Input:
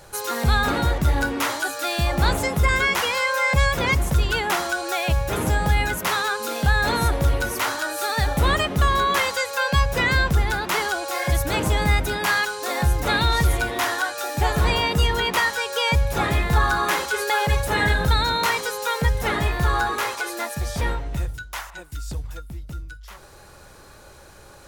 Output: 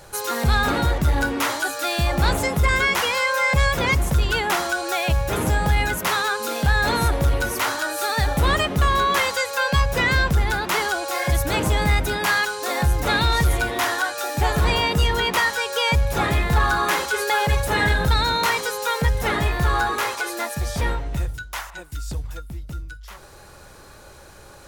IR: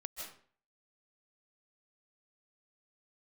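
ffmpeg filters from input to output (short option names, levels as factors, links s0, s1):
-af "asoftclip=type=tanh:threshold=0.299,volume=1.19"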